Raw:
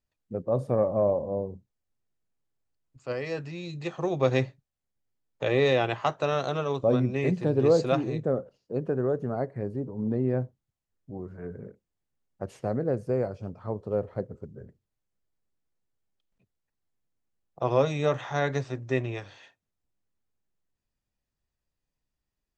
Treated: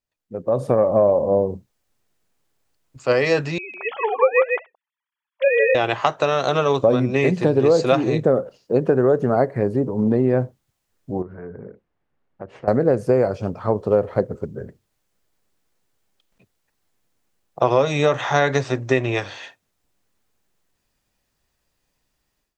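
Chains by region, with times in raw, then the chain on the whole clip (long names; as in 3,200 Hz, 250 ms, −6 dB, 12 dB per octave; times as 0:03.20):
0:03.58–0:05.75: three sine waves on the formant tracks + high-pass filter 560 Hz 24 dB per octave + single-tap delay 158 ms −4 dB
0:11.22–0:12.68: low-pass filter 1,900 Hz + downward compressor 2.5 to 1, threshold −49 dBFS
whole clip: downward compressor, threshold −26 dBFS; low-shelf EQ 230 Hz −8 dB; automatic gain control gain up to 16.5 dB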